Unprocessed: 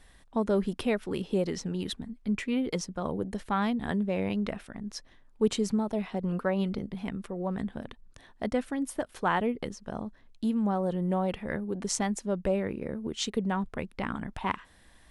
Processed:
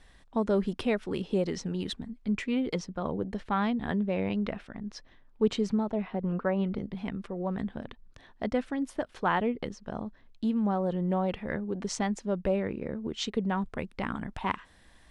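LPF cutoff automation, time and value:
7300 Hz
from 2.74 s 4400 Hz
from 5.91 s 2400 Hz
from 6.76 s 5300 Hz
from 13.58 s 9000 Hz

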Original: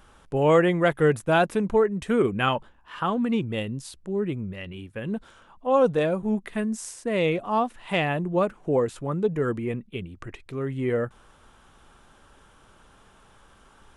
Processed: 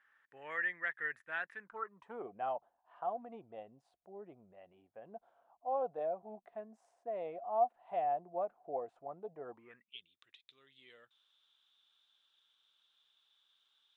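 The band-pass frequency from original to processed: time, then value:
band-pass, Q 11
1.56 s 1800 Hz
2.26 s 710 Hz
9.5 s 710 Hz
9.99 s 3600 Hz

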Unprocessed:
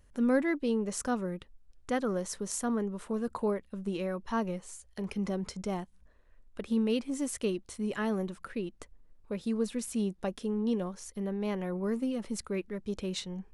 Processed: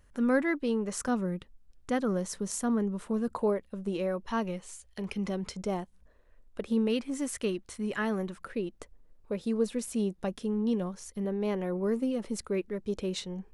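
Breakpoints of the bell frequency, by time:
bell +4.5 dB 1.2 oct
1400 Hz
from 1.08 s 180 Hz
from 3.34 s 560 Hz
from 4.28 s 2900 Hz
from 5.56 s 510 Hz
from 6.88 s 1700 Hz
from 8.41 s 510 Hz
from 10.18 s 130 Hz
from 11.25 s 440 Hz

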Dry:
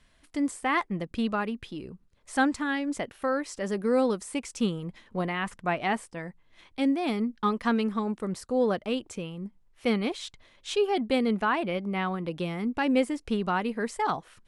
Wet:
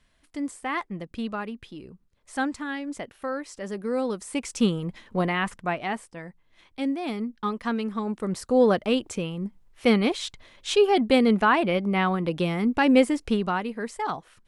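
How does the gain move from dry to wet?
4.04 s -3 dB
4.5 s +5 dB
5.38 s +5 dB
5.87 s -2 dB
7.84 s -2 dB
8.51 s +6 dB
13.22 s +6 dB
13.68 s -1.5 dB

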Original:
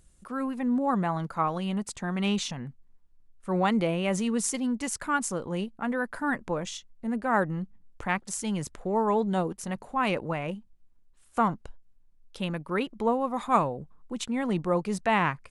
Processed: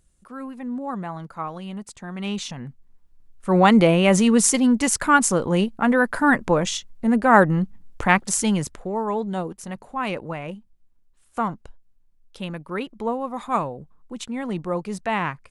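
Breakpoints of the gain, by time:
2.07 s -3.5 dB
2.66 s +3 dB
3.77 s +11 dB
8.42 s +11 dB
8.96 s 0 dB

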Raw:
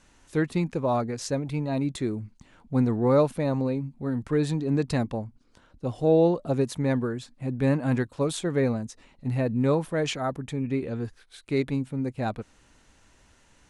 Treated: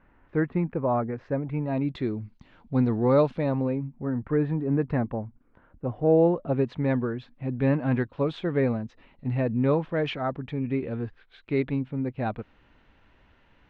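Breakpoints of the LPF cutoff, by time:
LPF 24 dB/oct
1.47 s 2000 Hz
2.16 s 4300 Hz
3.24 s 4300 Hz
3.99 s 2000 Hz
6.1 s 2000 Hz
6.77 s 3200 Hz

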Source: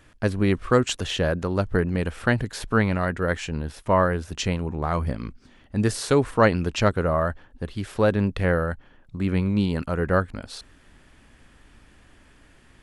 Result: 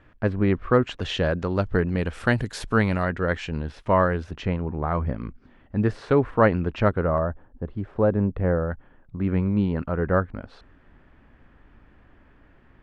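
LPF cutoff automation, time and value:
2100 Hz
from 1.01 s 4600 Hz
from 2.13 s 9600 Hz
from 3.03 s 4100 Hz
from 4.31 s 1900 Hz
from 7.18 s 1000 Hz
from 8.7 s 1700 Hz

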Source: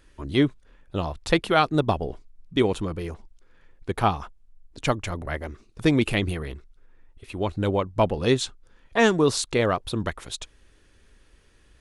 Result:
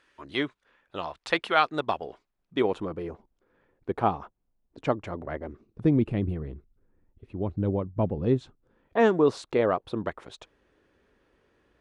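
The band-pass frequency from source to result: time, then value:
band-pass, Q 0.58
2.1 s 1600 Hz
3.12 s 440 Hz
5.24 s 440 Hz
5.96 s 160 Hz
8.3 s 160 Hz
9.11 s 540 Hz

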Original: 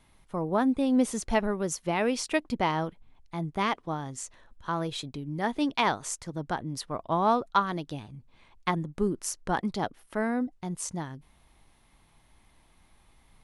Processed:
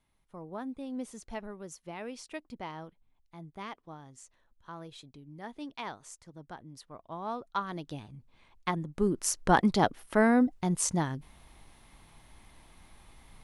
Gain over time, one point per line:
7.2 s -14 dB
7.91 s -3.5 dB
8.82 s -3.5 dB
9.45 s +5.5 dB

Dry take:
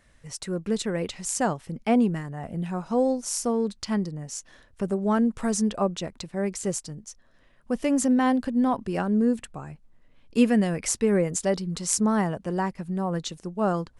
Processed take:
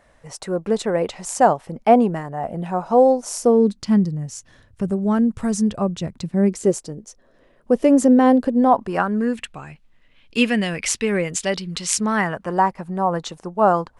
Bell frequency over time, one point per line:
bell +13.5 dB 1.8 oct
3.24 s 720 Hz
4.15 s 100 Hz
5.97 s 100 Hz
6.78 s 440 Hz
8.47 s 440 Hz
9.48 s 2800 Hz
12.02 s 2800 Hz
12.61 s 880 Hz

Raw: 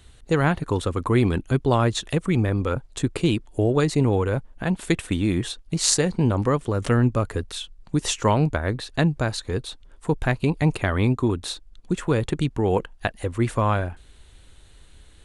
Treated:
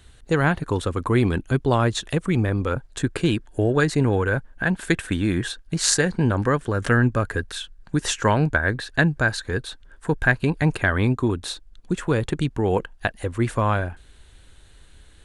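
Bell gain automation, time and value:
bell 1600 Hz 0.3 oct
2.66 s +4.5 dB
3.14 s +14 dB
10.55 s +14 dB
11.35 s +4.5 dB

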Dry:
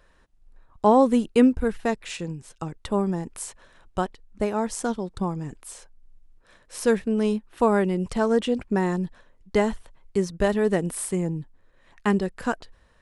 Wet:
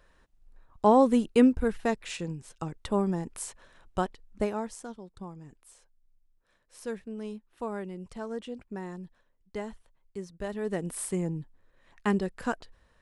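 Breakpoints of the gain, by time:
4.42 s -3 dB
4.86 s -15 dB
10.37 s -15 dB
11.01 s -4.5 dB

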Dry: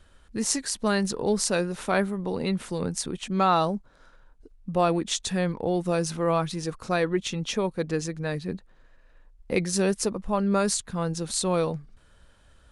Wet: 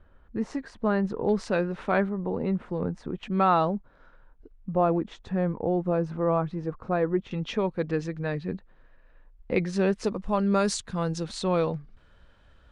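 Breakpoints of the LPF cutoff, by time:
1400 Hz
from 1.29 s 2300 Hz
from 2.09 s 1300 Hz
from 3.23 s 2400 Hz
from 4.74 s 1200 Hz
from 7.31 s 2800 Hz
from 10.04 s 6100 Hz
from 11.24 s 3600 Hz

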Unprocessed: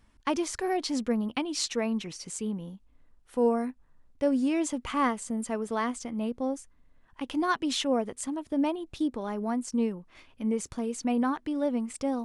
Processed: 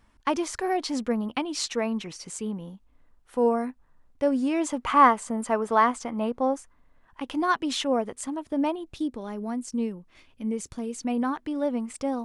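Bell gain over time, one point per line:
bell 1000 Hz 2.1 oct
4.52 s +4.5 dB
4.93 s +12 dB
6.57 s +12 dB
7.23 s +4 dB
8.71 s +4 dB
9.15 s -4 dB
10.73 s -4 dB
11.54 s +3 dB

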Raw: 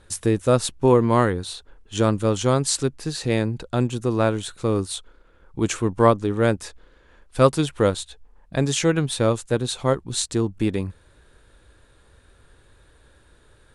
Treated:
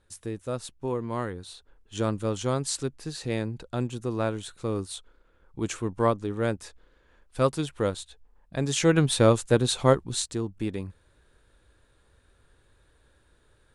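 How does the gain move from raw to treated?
0.98 s -14 dB
2.05 s -7.5 dB
8.56 s -7.5 dB
9 s +1 dB
9.91 s +1 dB
10.38 s -8 dB

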